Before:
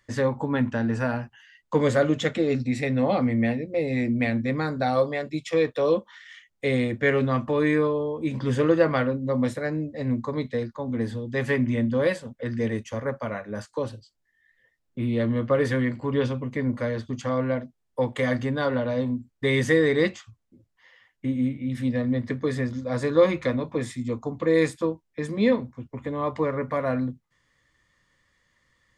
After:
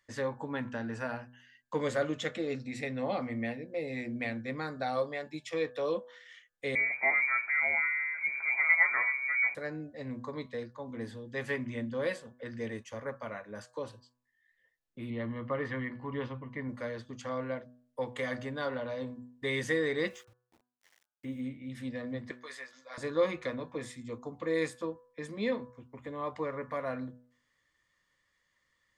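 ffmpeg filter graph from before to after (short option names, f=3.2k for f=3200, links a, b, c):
-filter_complex "[0:a]asettb=1/sr,asplit=3[a][b][c];[a]atrim=end=6.754[d];[b]atrim=start=6.75:end=9.55,asetpts=PTS-STARTPTS,afade=t=in:d=0.004:c=qsin,afade=t=out:st=2.796:d=0.004:c=qsin,aeval=exprs='val(0)+0.5*0.0158*sgn(val(0))':c=same,asplit=2[e][f];[f]adelay=12,volume=-11.5dB[g];[e][g]amix=inputs=2:normalize=0,atrim=end_sample=123480,lowpass=f=2.1k:t=q:w=0.5098,lowpass=f=2.1k:t=q:w=0.6013,lowpass=f=2.1k:t=q:w=0.9,lowpass=f=2.1k:t=q:w=2.563,afreqshift=-2500[h];[c]atrim=start=9.546[i];[d][h]acrossfade=d=0.004:c1=hsin:c2=qsin[j];[j][i]acrossfade=d=0.004:c1=qsin:c2=hsin,asettb=1/sr,asplit=3[k][l][m];[k]atrim=end=15.104[n];[l]atrim=start=15.1:end=16.69,asetpts=PTS-STARTPTS,afade=t=in:d=0.004:c=qsin,afade=t=out:st=1.586:d=0.004:c=qsin,lowpass=2.8k,aecho=1:1:1:0.34,atrim=end_sample=70119[o];[m]atrim=start=16.686[p];[n][o]acrossfade=d=0.004:c1=hsin:c2=qsin[q];[q][p]acrossfade=d=0.004:c1=qsin:c2=hsin,asettb=1/sr,asplit=3[r][s][t];[r]atrim=end=20.064[u];[s]atrim=start=20.06:end=21.41,asetpts=PTS-STARTPTS,afade=t=in:d=0.004:c=qsin,afade=t=out:st=1.346:d=0.004:c=qsin,bandreject=f=4.4k:w=5.5,aeval=exprs='val(0)*gte(abs(val(0)),0.00299)':c=same[v];[t]atrim=start=21.406[w];[u][v]acrossfade=d=0.004:c1=hsin:c2=qsin[x];[x][w]acrossfade=d=0.004:c1=qsin:c2=hsin,asettb=1/sr,asplit=3[y][z][aa];[y]atrim=end=22.314[ab];[z]atrim=start=22.31:end=22.98,asetpts=PTS-STARTPTS,afade=t=in:d=0.004:c=qsin,afade=t=out:st=0.666:d=0.004:c=qsin,highpass=1k,asplit=2[ac][ad];[ad]adelay=15,volume=-6.5dB[ae];[ac][ae]amix=inputs=2:normalize=0,atrim=end_sample=29547[af];[aa]atrim=start=22.976[ag];[ab][af]acrossfade=d=0.004:c1=hsin:c2=qsin[ah];[ah][ag]acrossfade=d=0.004:c1=qsin:c2=hsin,lowshelf=f=350:g=-8,bandreject=f=123.6:t=h:w=4,bandreject=f=247.2:t=h:w=4,bandreject=f=370.8:t=h:w=4,bandreject=f=494.4:t=h:w=4,bandreject=f=618:t=h:w=4,bandreject=f=741.6:t=h:w=4,bandreject=f=865.2:t=h:w=4,bandreject=f=988.8:t=h:w=4,bandreject=f=1.1124k:t=h:w=4,bandreject=f=1.236k:t=h:w=4,bandreject=f=1.3596k:t=h:w=4,bandreject=f=1.4832k:t=h:w=4,bandreject=f=1.6068k:t=h:w=4,bandreject=f=1.7304k:t=h:w=4,volume=-7dB"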